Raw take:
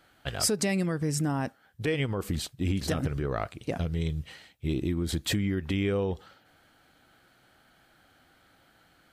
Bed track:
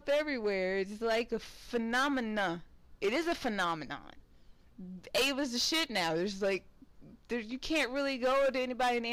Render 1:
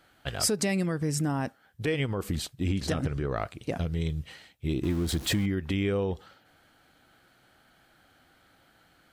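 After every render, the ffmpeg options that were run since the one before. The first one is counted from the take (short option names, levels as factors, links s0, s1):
-filter_complex "[0:a]asettb=1/sr,asplit=3[s0][s1][s2];[s0]atrim=end=2.654[s3];[s1]atrim=start=2.65:end=3.37,asetpts=PTS-STARTPTS,afade=t=in:d=0.004:c=qsin,afade=t=out:st=0.716:d=0.004:c=qsin,lowpass=10000[s4];[s2]atrim=start=3.366[s5];[s3][s4]acrossfade=d=0.004:c1=hsin:c2=qsin[s6];[s6][s5]acrossfade=d=0.004:c1=qsin:c2=hsin,asettb=1/sr,asplit=3[s7][s8][s9];[s7]atrim=end=4.834[s10];[s8]atrim=start=4.83:end=5.46,asetpts=PTS-STARTPTS,afade=t=in:d=0.004:c=qsin,afade=t=out:st=0.626:d=0.004:c=qsin,aeval=exprs='val(0)+0.5*0.015*sgn(val(0))':c=same[s11];[s9]atrim=start=5.456[s12];[s10][s11]acrossfade=d=0.004:c1=hsin:c2=qsin[s13];[s13][s12]acrossfade=d=0.004:c1=qsin:c2=hsin"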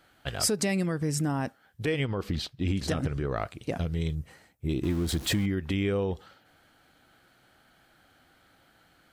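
-filter_complex "[0:a]asettb=1/sr,asplit=3[s0][s1][s2];[s0]atrim=end=2.054[s3];[s1]atrim=start=2.05:end=2.68,asetpts=PTS-STARTPTS,afade=t=in:d=0.004:c=qsin,afade=t=out:st=0.626:d=0.004:c=qsin,highshelf=f=6200:t=q:w=1.5:g=-9.5[s4];[s2]atrim=start=2.676[s5];[s3][s4]acrossfade=d=0.004:c1=hsin:c2=qsin[s6];[s6][s5]acrossfade=d=0.004:c1=qsin:c2=hsin,asplit=3[s7][s8][s9];[s7]afade=t=out:st=4.14:d=0.02[s10];[s8]equalizer=f=3300:w=1.1:g=-14.5,afade=t=in:st=4.14:d=0.02,afade=t=out:st=4.68:d=0.02[s11];[s9]afade=t=in:st=4.68:d=0.02[s12];[s10][s11][s12]amix=inputs=3:normalize=0"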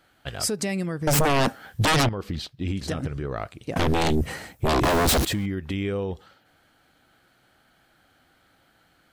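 -filter_complex "[0:a]asettb=1/sr,asplit=3[s0][s1][s2];[s0]atrim=end=1.074[s3];[s1]atrim=start=1.07:end=2.09,asetpts=PTS-STARTPTS,afade=t=in:d=0.004:c=qsin,afade=t=out:st=1.016:d=0.004:c=qsin,aeval=exprs='0.15*sin(PI/2*5.01*val(0)/0.15)':c=same[s4];[s2]atrim=start=2.086[s5];[s3][s4]acrossfade=d=0.004:c1=hsin:c2=qsin[s6];[s6][s5]acrossfade=d=0.004:c1=qsin:c2=hsin,asettb=1/sr,asplit=3[s7][s8][s9];[s7]atrim=end=3.764[s10];[s8]atrim=start=3.76:end=5.25,asetpts=PTS-STARTPTS,afade=t=in:d=0.004:c=qsin,afade=t=out:st=1.486:d=0.004:c=qsin,aeval=exprs='0.133*sin(PI/2*5.62*val(0)/0.133)':c=same[s11];[s9]atrim=start=5.246[s12];[s10][s11]acrossfade=d=0.004:c1=hsin:c2=qsin[s13];[s13][s12]acrossfade=d=0.004:c1=qsin:c2=hsin"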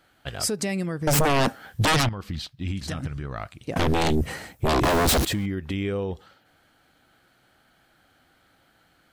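-filter_complex "[0:a]asettb=1/sr,asplit=3[s0][s1][s2];[s0]atrim=end=1.974[s3];[s1]atrim=start=1.97:end=3.63,asetpts=PTS-STARTPTS,afade=t=in:d=0.004:c=qsin,afade=t=out:st=1.656:d=0.004:c=qsin,equalizer=f=430:t=o:w=1.1:g=-9.5[s4];[s2]atrim=start=3.626[s5];[s3][s4]acrossfade=d=0.004:c1=hsin:c2=qsin[s6];[s6][s5]acrossfade=d=0.004:c1=qsin:c2=hsin"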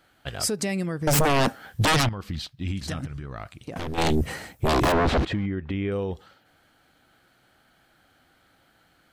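-filter_complex "[0:a]asettb=1/sr,asplit=3[s0][s1][s2];[s0]atrim=end=3.054[s3];[s1]atrim=start=3.05:end=3.98,asetpts=PTS-STARTPTS,afade=t=in:d=0.004:c=qsin,afade=t=out:st=0.926:d=0.004:c=qsin,acompressor=threshold=0.0316:ratio=6:attack=3.2:release=140:knee=1:detection=peak[s4];[s2]atrim=start=3.976[s5];[s3][s4]acrossfade=d=0.004:c1=hsin:c2=qsin[s6];[s6][s5]acrossfade=d=0.004:c1=qsin:c2=hsin,asettb=1/sr,asplit=3[s7][s8][s9];[s7]atrim=end=4.924[s10];[s8]atrim=start=4.92:end=5.92,asetpts=PTS-STARTPTS,afade=t=in:d=0.004:c=qsin,afade=t=out:st=0.996:d=0.004:c=qsin,lowpass=2500[s11];[s9]atrim=start=5.916[s12];[s10][s11]acrossfade=d=0.004:c1=hsin:c2=qsin[s13];[s13][s12]acrossfade=d=0.004:c1=qsin:c2=hsin"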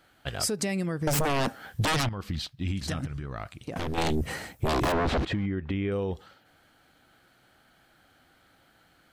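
-af "acompressor=threshold=0.0631:ratio=6"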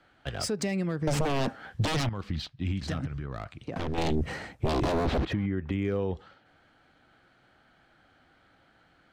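-filter_complex "[0:a]acrossover=split=170|780|2500[s0][s1][s2][s3];[s2]asoftclip=type=hard:threshold=0.0126[s4];[s3]adynamicsmooth=sensitivity=2:basefreq=5000[s5];[s0][s1][s4][s5]amix=inputs=4:normalize=0"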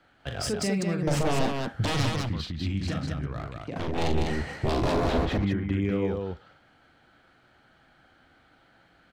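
-af "aecho=1:1:40.82|198.3:0.501|0.708"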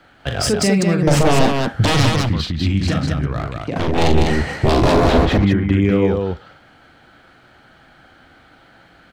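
-af "volume=3.76,alimiter=limit=0.891:level=0:latency=1"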